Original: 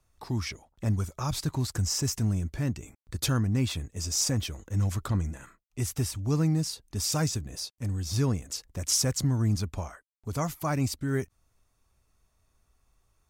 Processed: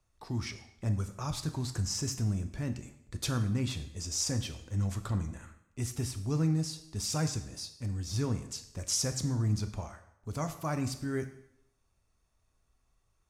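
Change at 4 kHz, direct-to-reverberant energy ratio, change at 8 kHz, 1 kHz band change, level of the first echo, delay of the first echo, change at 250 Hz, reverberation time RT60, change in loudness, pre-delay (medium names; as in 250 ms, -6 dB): -4.5 dB, 8.0 dB, -4.5 dB, -4.5 dB, no echo, no echo, -4.0 dB, 0.80 s, -4.5 dB, 6 ms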